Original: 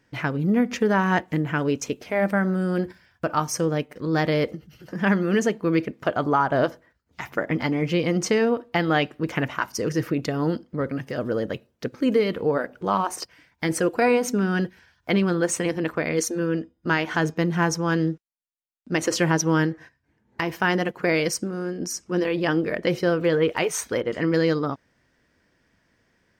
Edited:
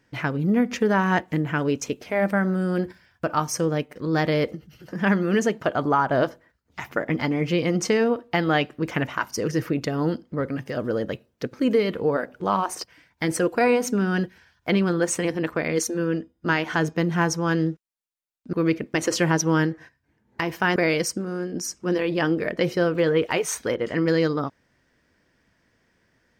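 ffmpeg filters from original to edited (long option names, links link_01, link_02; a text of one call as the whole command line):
ffmpeg -i in.wav -filter_complex "[0:a]asplit=5[link_01][link_02][link_03][link_04][link_05];[link_01]atrim=end=5.602[link_06];[link_02]atrim=start=6.008:end=18.942[link_07];[link_03]atrim=start=5.598:end=6.012[link_08];[link_04]atrim=start=18.938:end=20.762[link_09];[link_05]atrim=start=21.018[link_10];[link_06][link_07]acrossfade=duration=0.004:curve1=hsin:curve2=hsin[link_11];[link_11][link_08]acrossfade=duration=0.004:curve1=hsin:curve2=hsin[link_12];[link_12][link_09]acrossfade=duration=0.004:curve1=hsin:curve2=hsin[link_13];[link_13][link_10]acrossfade=duration=0.004:curve1=hsin:curve2=hsin" out.wav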